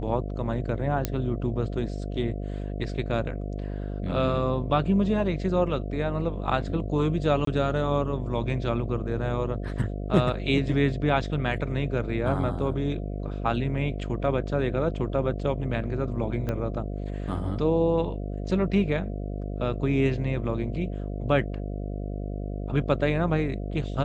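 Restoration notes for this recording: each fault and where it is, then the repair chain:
buzz 50 Hz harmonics 14 -32 dBFS
1.05 pop -10 dBFS
7.45–7.47 gap 23 ms
16.49 pop -17 dBFS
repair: de-click; de-hum 50 Hz, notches 14; interpolate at 7.45, 23 ms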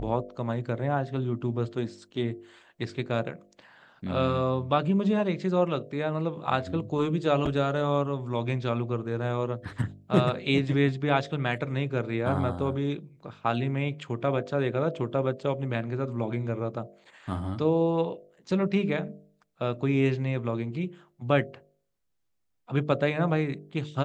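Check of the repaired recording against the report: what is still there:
16.49 pop

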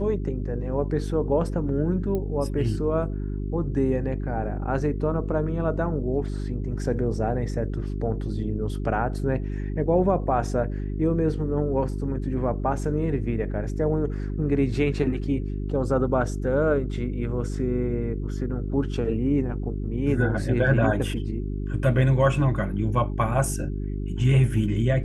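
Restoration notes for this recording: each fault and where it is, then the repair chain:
hum 50 Hz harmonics 8 -29 dBFS
2.15 pop -18 dBFS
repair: de-click; de-hum 50 Hz, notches 8

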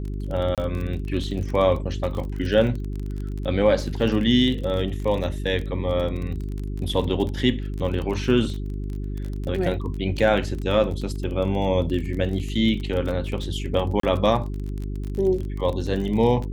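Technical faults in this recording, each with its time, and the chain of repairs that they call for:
crackle 32/s -29 dBFS
hum 50 Hz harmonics 8 -29 dBFS
0.55–0.58 gap 27 ms
14–14.03 gap 33 ms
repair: de-click; de-hum 50 Hz, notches 8; interpolate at 0.55, 27 ms; interpolate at 14, 33 ms

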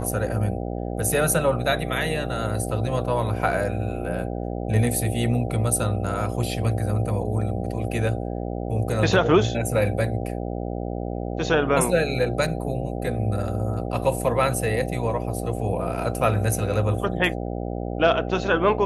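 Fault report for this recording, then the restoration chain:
buzz 60 Hz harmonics 13 -29 dBFS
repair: de-hum 60 Hz, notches 13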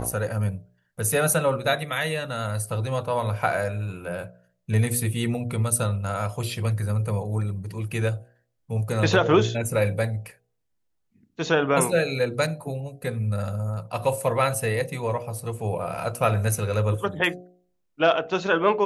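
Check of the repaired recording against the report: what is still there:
none

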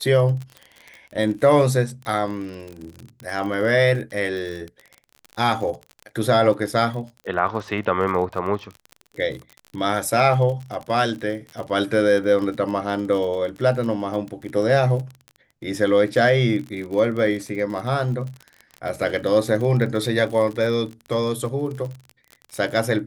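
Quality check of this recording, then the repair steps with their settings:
crackle 34/s -29 dBFS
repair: de-click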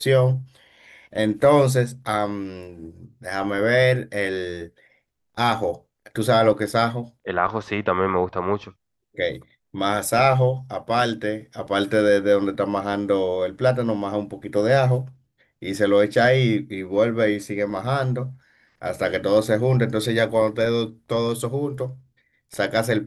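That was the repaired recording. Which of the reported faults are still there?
none

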